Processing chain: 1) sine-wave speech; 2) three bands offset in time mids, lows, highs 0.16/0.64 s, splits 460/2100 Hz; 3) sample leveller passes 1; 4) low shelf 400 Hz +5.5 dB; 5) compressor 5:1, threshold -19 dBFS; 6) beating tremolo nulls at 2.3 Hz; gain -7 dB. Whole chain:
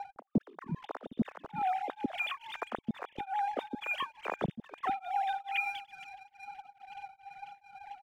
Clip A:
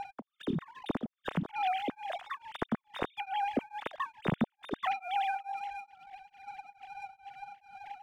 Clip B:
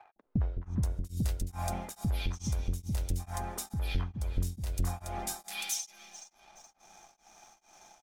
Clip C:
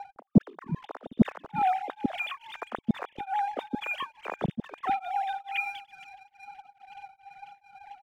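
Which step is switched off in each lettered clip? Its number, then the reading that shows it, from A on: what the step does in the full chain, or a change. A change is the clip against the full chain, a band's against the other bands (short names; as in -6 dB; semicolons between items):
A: 2, crest factor change -1.5 dB; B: 1, 125 Hz band +16.5 dB; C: 5, mean gain reduction 2.0 dB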